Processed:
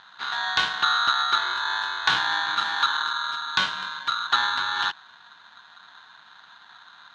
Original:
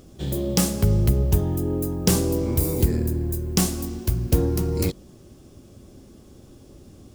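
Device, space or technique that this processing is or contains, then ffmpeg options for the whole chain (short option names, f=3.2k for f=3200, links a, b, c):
ring modulator pedal into a guitar cabinet: -af "aeval=exprs='val(0)*sgn(sin(2*PI*1300*n/s))':c=same,highpass=83,equalizer=f=510:t=q:w=4:g=-10,equalizer=f=1.2k:t=q:w=4:g=-8,equalizer=f=3.1k:t=q:w=4:g=10,lowpass=f=4.2k:w=0.5412,lowpass=f=4.2k:w=1.3066"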